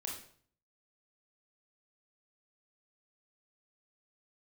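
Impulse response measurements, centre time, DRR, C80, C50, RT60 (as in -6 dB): 34 ms, -1.5 dB, 9.0 dB, 5.0 dB, 0.55 s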